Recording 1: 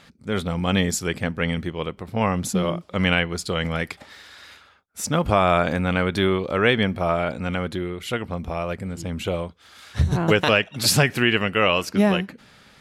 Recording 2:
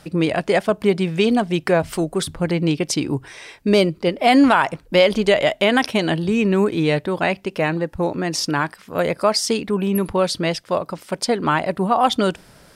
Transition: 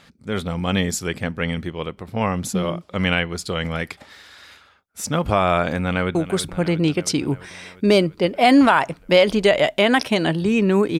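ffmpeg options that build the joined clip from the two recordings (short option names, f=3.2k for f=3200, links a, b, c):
-filter_complex "[0:a]apad=whole_dur=10.99,atrim=end=10.99,atrim=end=6.152[a];[1:a]atrim=start=1.978:end=6.82[b];[a][b]acrossfade=d=0.004:c1=hsin:c2=hsin,asplit=2[c][d];[d]afade=t=in:st=5.8:d=0.01,afade=t=out:st=6.15:d=0.01,aecho=0:1:340|680|1020|1360|1700|2040|2380|2720|3060:0.237137|0.165996|0.116197|0.0813381|0.0569367|0.0398557|0.027899|0.0195293|0.0136705[e];[c][e]amix=inputs=2:normalize=0"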